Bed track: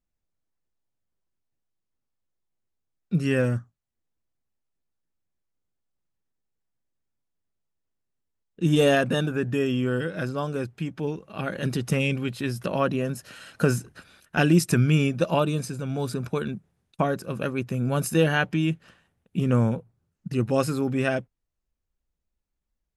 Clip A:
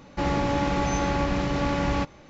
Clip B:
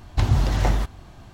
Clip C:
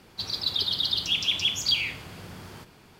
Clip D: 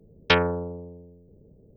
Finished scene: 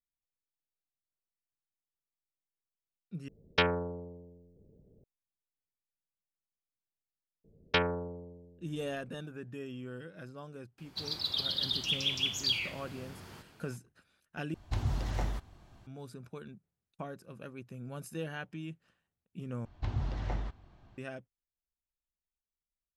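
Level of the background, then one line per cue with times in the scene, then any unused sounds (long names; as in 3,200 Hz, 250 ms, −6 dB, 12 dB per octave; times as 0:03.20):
bed track −18 dB
0:03.28: overwrite with D −7.5 dB
0:07.44: mix in D −8.5 dB + one half of a high-frequency compander decoder only
0:10.78: mix in C −6.5 dB
0:14.54: overwrite with B −13 dB
0:19.65: overwrite with B −14.5 dB + high-frequency loss of the air 140 metres
not used: A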